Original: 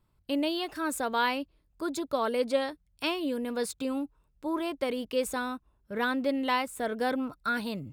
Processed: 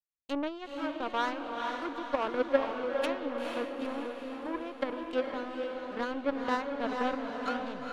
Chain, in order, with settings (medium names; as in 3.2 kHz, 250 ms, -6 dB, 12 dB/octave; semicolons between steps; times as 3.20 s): low-pass that closes with the level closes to 1.5 kHz, closed at -26.5 dBFS; power-law waveshaper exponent 2; echo that smears into a reverb 465 ms, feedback 54%, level -3 dB; trim +5 dB